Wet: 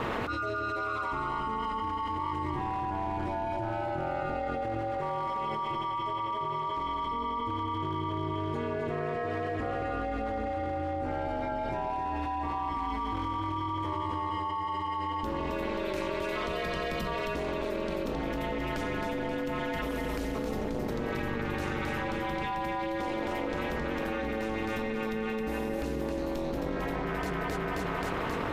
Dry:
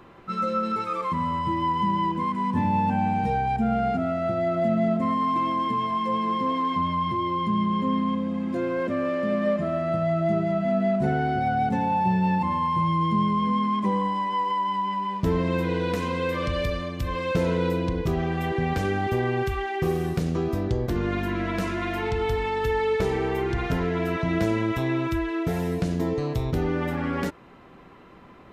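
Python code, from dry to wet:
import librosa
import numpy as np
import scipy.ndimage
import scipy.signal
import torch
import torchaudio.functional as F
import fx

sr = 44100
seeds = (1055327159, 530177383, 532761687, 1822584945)

y = np.clip(x, -10.0 ** (-18.5 / 20.0), 10.0 ** (-18.5 / 20.0))
y = fx.peak_eq(y, sr, hz=75.0, db=-7.0, octaves=2.6)
y = fx.comb_fb(y, sr, f0_hz=890.0, decay_s=0.3, harmonics='all', damping=0.0, mix_pct=50)
y = fx.echo_feedback(y, sr, ms=266, feedback_pct=50, wet_db=-3)
y = y * np.sin(2.0 * np.pi * 110.0 * np.arange(len(y)) / sr)
y = fx.env_flatten(y, sr, amount_pct=100)
y = y * 10.0 ** (-6.5 / 20.0)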